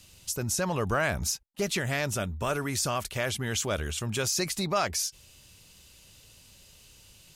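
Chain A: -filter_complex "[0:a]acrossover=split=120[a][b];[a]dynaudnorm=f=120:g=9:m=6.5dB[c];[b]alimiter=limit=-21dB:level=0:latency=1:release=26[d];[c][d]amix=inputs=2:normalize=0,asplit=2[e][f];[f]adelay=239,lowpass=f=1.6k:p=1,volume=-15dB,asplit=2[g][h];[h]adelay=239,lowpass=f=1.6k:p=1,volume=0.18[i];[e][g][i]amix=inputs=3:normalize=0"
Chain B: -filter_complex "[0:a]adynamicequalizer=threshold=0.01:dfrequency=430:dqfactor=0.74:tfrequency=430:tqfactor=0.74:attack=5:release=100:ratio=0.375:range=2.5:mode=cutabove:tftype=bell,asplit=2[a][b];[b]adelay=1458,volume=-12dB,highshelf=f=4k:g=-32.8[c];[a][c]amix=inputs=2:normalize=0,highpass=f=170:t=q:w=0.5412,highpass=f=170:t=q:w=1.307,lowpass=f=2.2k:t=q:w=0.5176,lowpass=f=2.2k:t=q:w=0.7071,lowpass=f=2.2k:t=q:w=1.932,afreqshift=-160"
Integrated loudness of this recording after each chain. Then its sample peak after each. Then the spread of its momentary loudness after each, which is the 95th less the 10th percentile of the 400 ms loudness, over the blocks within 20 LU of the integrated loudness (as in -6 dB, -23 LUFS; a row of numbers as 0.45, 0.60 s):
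-30.5, -34.0 LUFS; -15.5, -16.5 dBFS; 3, 19 LU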